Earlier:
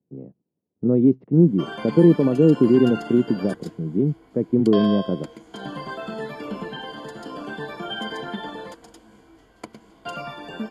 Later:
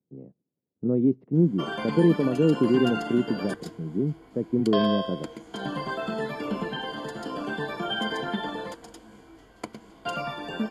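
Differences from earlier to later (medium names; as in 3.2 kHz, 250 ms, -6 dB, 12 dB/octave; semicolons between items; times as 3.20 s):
speech -6.5 dB; reverb: on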